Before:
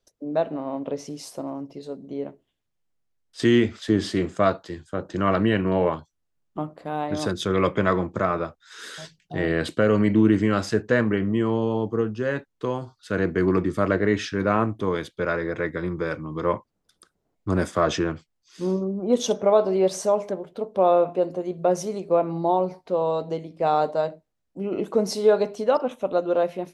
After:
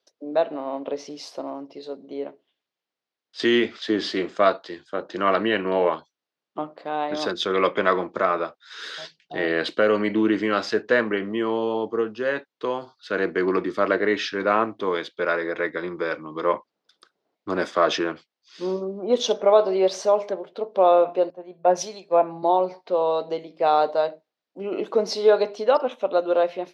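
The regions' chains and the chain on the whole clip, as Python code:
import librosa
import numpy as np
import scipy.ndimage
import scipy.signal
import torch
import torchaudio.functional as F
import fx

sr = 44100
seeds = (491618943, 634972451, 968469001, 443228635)

y = fx.chain(x, sr, fx.comb(ms=1.2, depth=0.36),
    fx.band_widen(depth_pct=100), at=(21.3, 22.43))
y = scipy.signal.sosfilt(scipy.signal.butter(2, 360.0, 'highpass', fs=sr, output='sos'), y)
y = fx.high_shelf_res(y, sr, hz=6500.0, db=-13.5, q=1.5)
y = y * 10.0 ** (2.5 / 20.0)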